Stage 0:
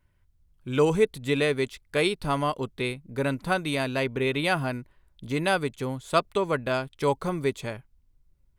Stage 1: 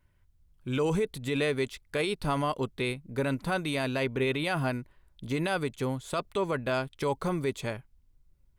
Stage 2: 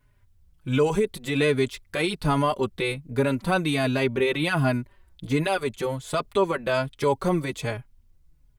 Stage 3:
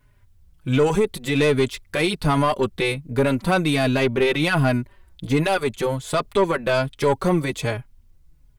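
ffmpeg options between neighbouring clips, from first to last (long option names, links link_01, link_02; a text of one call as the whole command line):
ffmpeg -i in.wav -af "alimiter=limit=-19.5dB:level=0:latency=1:release=25" out.wav
ffmpeg -i in.wav -filter_complex "[0:a]asplit=2[link_01][link_02];[link_02]adelay=4.3,afreqshift=-1.3[link_03];[link_01][link_03]amix=inputs=2:normalize=1,volume=8dB" out.wav
ffmpeg -i in.wav -af "aeval=exprs='(tanh(6.31*val(0)+0.25)-tanh(0.25))/6.31':channel_layout=same,volume=5.5dB" out.wav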